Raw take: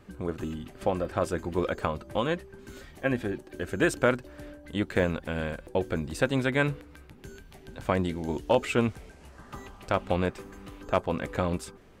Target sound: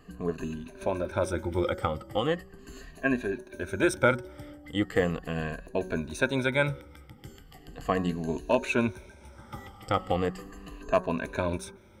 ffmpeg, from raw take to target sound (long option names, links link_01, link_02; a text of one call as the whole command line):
ffmpeg -i in.wav -af "afftfilt=real='re*pow(10,15/40*sin(2*PI*(1.5*log(max(b,1)*sr/1024/100)/log(2)-(-0.38)*(pts-256)/sr)))':imag='im*pow(10,15/40*sin(2*PI*(1.5*log(max(b,1)*sr/1024/100)/log(2)-(-0.38)*(pts-256)/sr)))':win_size=1024:overlap=0.75,bandreject=frequency=185.2:width_type=h:width=4,bandreject=frequency=370.4:width_type=h:width=4,bandreject=frequency=555.6:width_type=h:width=4,bandreject=frequency=740.8:width_type=h:width=4,bandreject=frequency=926:width_type=h:width=4,bandreject=frequency=1111.2:width_type=h:width=4,bandreject=frequency=1296.4:width_type=h:width=4,bandreject=frequency=1481.6:width_type=h:width=4,bandreject=frequency=1666.8:width_type=h:width=4,bandreject=frequency=1852:width_type=h:width=4,volume=-2.5dB" out.wav